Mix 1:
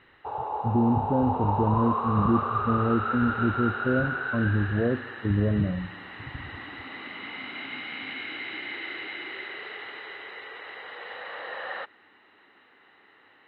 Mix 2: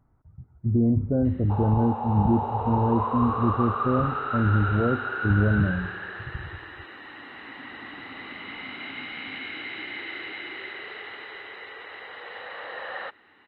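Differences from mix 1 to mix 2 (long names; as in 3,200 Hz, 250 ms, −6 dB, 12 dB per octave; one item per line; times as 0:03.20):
background: entry +1.25 s
master: add low-shelf EQ 100 Hz +8 dB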